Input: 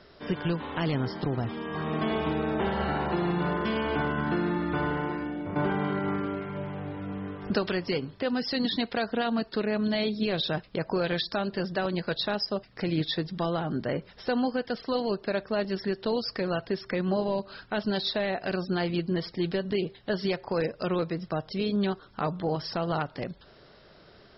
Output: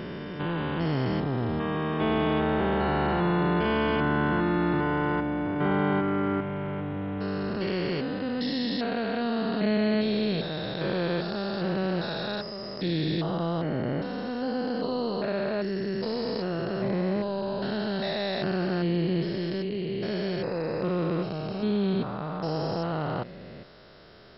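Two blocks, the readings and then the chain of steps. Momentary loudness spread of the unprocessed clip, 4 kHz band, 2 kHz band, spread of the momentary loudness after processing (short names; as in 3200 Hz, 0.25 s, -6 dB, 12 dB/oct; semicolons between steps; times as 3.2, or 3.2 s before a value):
5 LU, -2.0 dB, +1.0 dB, 7 LU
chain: stepped spectrum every 0.4 s; gain +4.5 dB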